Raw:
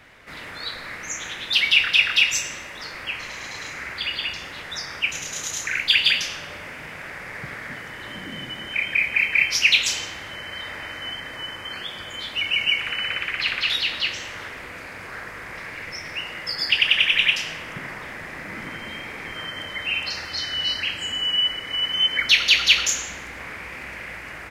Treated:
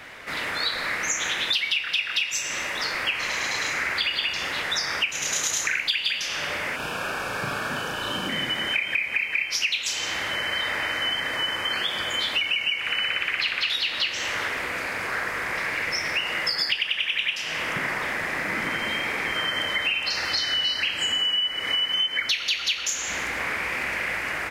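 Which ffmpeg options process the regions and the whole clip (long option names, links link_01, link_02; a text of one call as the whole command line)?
ffmpeg -i in.wav -filter_complex "[0:a]asettb=1/sr,asplit=3[link_01][link_02][link_03];[link_01]atrim=end=6.764[link_04];[link_02]atrim=start=6.76:end=8.29,asetpts=PTS-STARTPTS,afade=type=in:duration=0.004:curve=qsin,afade=type=out:start_time=1.526:duration=0.004:curve=qsin,asuperstop=centerf=2000:order=4:qfactor=2.6,asplit=2[link_05][link_06];[link_06]adelay=36,volume=-2dB[link_07];[link_05][link_07]amix=inputs=2:normalize=0,atrim=end_sample=67473[link_08];[link_03]atrim=start=8.286[link_09];[link_04][link_08]acrossfade=duration=0.004:curve1=hsin:curve2=qsin[link_10];[link_10][link_09]acrossfade=duration=0.004:curve1=qsin:curve2=hsin,lowshelf=frequency=210:gain=-9.5,acompressor=threshold=-30dB:ratio=16,volume=8.5dB" out.wav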